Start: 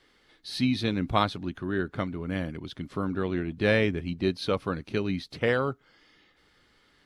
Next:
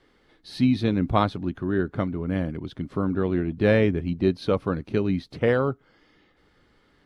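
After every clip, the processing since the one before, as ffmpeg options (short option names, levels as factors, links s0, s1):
-af "tiltshelf=f=1500:g=5.5"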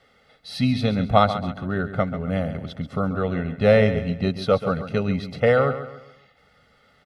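-filter_complex "[0:a]highpass=f=150:p=1,aecho=1:1:1.5:0.91,asplit=2[s0][s1];[s1]aecho=0:1:137|274|411|548:0.266|0.101|0.0384|0.0146[s2];[s0][s2]amix=inputs=2:normalize=0,volume=1.33"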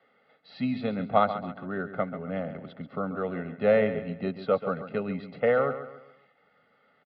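-filter_complex "[0:a]highpass=100,acrossover=split=170 2700:gain=0.2 1 0.178[s0][s1][s2];[s0][s1][s2]amix=inputs=3:normalize=0,aresample=11025,aresample=44100,volume=0.562"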